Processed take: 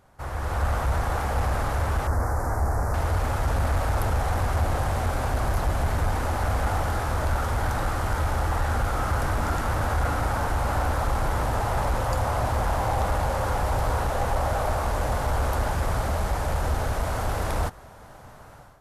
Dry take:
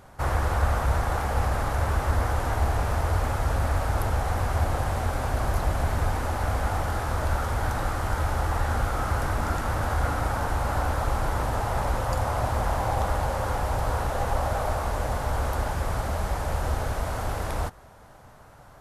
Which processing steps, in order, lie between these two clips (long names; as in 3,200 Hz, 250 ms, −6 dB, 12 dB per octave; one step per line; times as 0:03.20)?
automatic gain control gain up to 13 dB
soft clipping −7 dBFS, distortion −20 dB
0:02.07–0:02.94: Butterworth band-reject 3,100 Hz, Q 0.83
level −8.5 dB